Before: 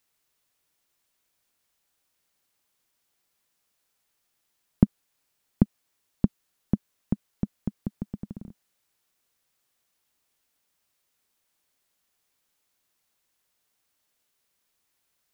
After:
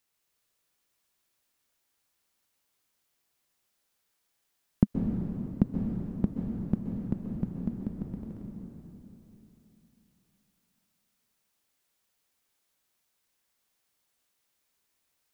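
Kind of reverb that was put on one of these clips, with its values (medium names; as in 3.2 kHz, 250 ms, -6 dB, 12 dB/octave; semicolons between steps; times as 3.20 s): plate-style reverb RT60 3.3 s, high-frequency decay 0.9×, pre-delay 115 ms, DRR 0.5 dB; trim -4 dB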